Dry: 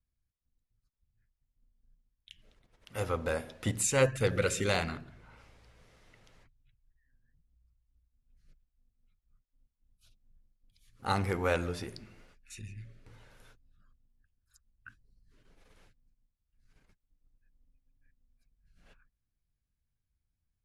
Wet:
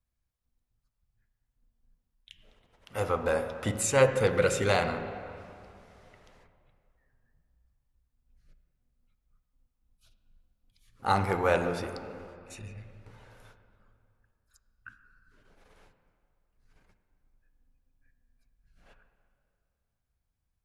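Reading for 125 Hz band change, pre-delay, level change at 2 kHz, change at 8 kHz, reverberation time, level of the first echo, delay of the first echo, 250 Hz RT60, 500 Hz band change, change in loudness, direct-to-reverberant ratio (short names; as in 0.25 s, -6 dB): +1.0 dB, 20 ms, +3.5 dB, 0.0 dB, 2.6 s, none, none, 2.6 s, +5.5 dB, +3.5 dB, 8.5 dB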